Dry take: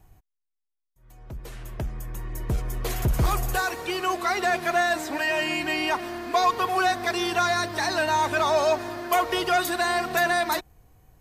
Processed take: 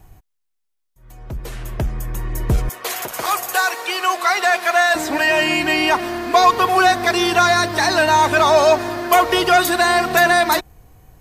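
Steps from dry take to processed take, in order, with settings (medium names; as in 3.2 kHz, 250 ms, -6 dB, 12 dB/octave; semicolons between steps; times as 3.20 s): 2.69–4.95 s: high-pass 650 Hz 12 dB/octave; trim +9 dB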